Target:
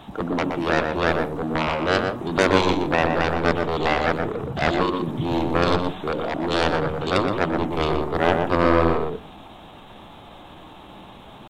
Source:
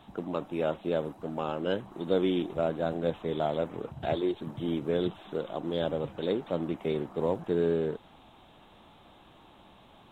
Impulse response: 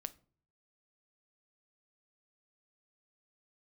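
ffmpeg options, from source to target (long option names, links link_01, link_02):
-filter_complex "[0:a]atempo=0.88,aeval=exprs='0.211*(cos(1*acos(clip(val(0)/0.211,-1,1)))-cos(1*PI/2))+0.0841*(cos(7*acos(clip(val(0)/0.211,-1,1)))-cos(7*PI/2))':channel_layout=same,asplit=2[link_01][link_02];[1:a]atrim=start_sample=2205,highshelf=frequency=2100:gain=-10.5,adelay=121[link_03];[link_02][link_03]afir=irnorm=-1:irlink=0,volume=0.5dB[link_04];[link_01][link_04]amix=inputs=2:normalize=0,volume=6.5dB"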